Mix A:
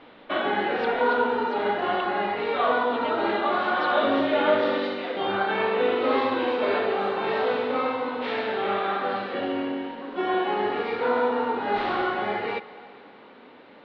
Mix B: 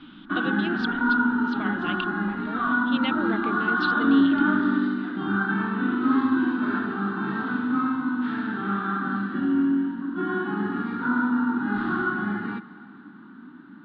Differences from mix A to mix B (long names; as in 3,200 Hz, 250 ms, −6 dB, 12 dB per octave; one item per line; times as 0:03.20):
speech +8.5 dB
background: add drawn EQ curve 100 Hz 0 dB, 180 Hz +13 dB, 320 Hz +8 dB, 500 Hz −28 dB, 860 Hz −9 dB, 1,500 Hz +6 dB, 2,200 Hz −18 dB, 3,400 Hz −10 dB, 5,600 Hz −15 dB, 9,400 Hz −9 dB